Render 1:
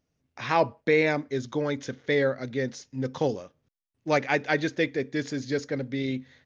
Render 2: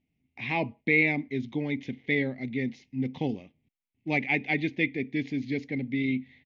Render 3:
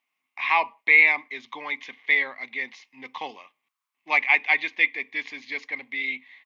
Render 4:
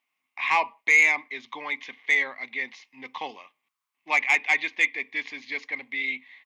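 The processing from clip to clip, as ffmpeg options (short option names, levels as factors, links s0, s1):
-af "firequalizer=gain_entry='entry(130,0);entry(230,6);entry(540,-12);entry(760,-3);entry(1400,-25);entry(2100,8);entry(5100,-14);entry(7500,-21)':delay=0.05:min_phase=1,volume=0.841"
-af "highpass=f=1100:t=q:w=8.1,volume=2"
-af "asoftclip=type=tanh:threshold=0.299"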